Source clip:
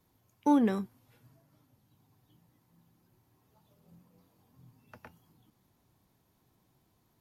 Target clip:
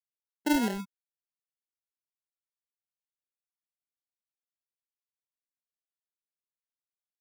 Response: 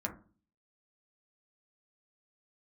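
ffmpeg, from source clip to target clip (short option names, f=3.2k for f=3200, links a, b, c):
-af "afftfilt=real='re*gte(hypot(re,im),0.0501)':imag='im*gte(hypot(re,im),0.0501)':win_size=1024:overlap=0.75,acrusher=samples=37:mix=1:aa=0.000001,volume=-2dB"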